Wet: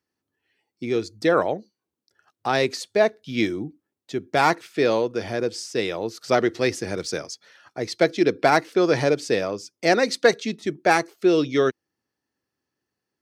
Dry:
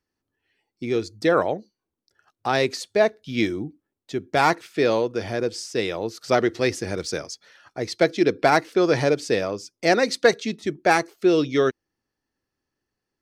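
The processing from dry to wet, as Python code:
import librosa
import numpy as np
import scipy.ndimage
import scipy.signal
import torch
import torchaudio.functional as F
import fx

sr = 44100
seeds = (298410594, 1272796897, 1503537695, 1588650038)

y = scipy.signal.sosfilt(scipy.signal.butter(2, 97.0, 'highpass', fs=sr, output='sos'), x)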